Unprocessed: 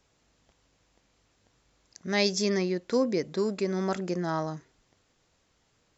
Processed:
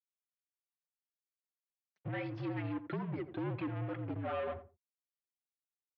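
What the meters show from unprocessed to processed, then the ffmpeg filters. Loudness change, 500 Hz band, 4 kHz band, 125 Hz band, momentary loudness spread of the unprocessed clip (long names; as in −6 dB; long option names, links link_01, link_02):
−11.0 dB, −13.0 dB, −23.0 dB, −3.5 dB, 8 LU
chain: -filter_complex "[0:a]afftdn=noise_reduction=24:noise_floor=-41,aecho=1:1:4.8:0.76,alimiter=limit=-19.5dB:level=0:latency=1:release=430,acompressor=threshold=-31dB:ratio=2.5,aeval=exprs='sgn(val(0))*max(abs(val(0))-0.00335,0)':channel_layout=same,tremolo=f=1.1:d=0.48,aphaser=in_gain=1:out_gain=1:delay=4.9:decay=0.46:speed=1.7:type=sinusoidal,asoftclip=type=tanh:threshold=-38.5dB,asplit=2[link_01][link_02];[link_02]adelay=86,lowpass=frequency=1100:poles=1,volume=-11dB,asplit=2[link_03][link_04];[link_04]adelay=86,lowpass=frequency=1100:poles=1,volume=0.18[link_05];[link_03][link_05]amix=inputs=2:normalize=0[link_06];[link_01][link_06]amix=inputs=2:normalize=0,highpass=frequency=190:width_type=q:width=0.5412,highpass=frequency=190:width_type=q:width=1.307,lowpass=frequency=3200:width_type=q:width=0.5176,lowpass=frequency=3200:width_type=q:width=0.7071,lowpass=frequency=3200:width_type=q:width=1.932,afreqshift=-72,volume=5dB"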